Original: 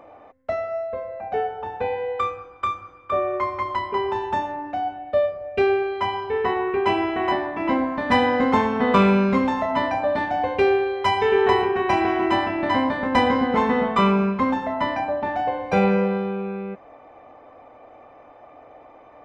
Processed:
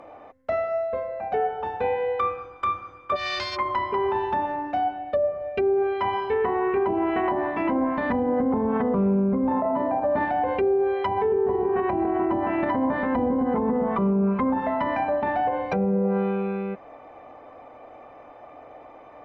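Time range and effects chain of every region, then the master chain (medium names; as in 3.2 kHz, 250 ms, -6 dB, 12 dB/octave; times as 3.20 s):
3.15–3.55 s: formants flattened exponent 0.1 + compression 10:1, threshold -24 dBFS + resonant low-pass 4.9 kHz, resonance Q 4.4
9.51–10.00 s: high-pass 260 Hz 6 dB/octave + level flattener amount 100%
whole clip: low-pass that closes with the level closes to 510 Hz, closed at -15.5 dBFS; peak limiter -17.5 dBFS; hum notches 50/100 Hz; trim +1.5 dB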